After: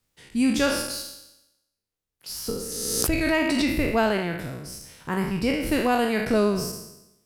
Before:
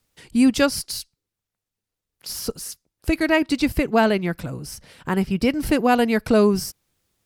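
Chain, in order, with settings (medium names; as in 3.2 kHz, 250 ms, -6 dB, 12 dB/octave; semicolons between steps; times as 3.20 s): spectral sustain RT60 0.89 s; 2.57–3.67 s: swell ahead of each attack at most 31 dB/s; trim -6 dB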